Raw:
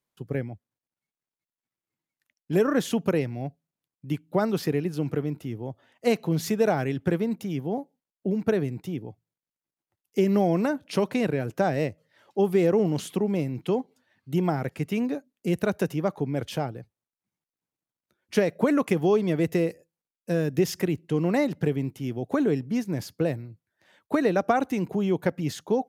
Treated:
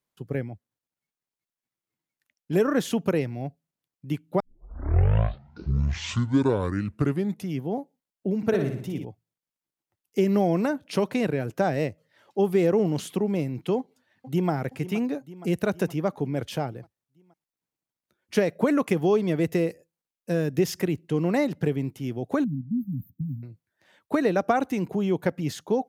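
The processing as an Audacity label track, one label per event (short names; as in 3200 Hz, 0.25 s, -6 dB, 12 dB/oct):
4.400000	4.400000	tape start 3.25 s
8.370000	9.050000	flutter echo walls apart 10 m, dies away in 0.59 s
13.770000	14.510000	echo throw 0.47 s, feedback 60%, level -14 dB
22.440000	23.430000	brick-wall FIR band-stop 280–13000 Hz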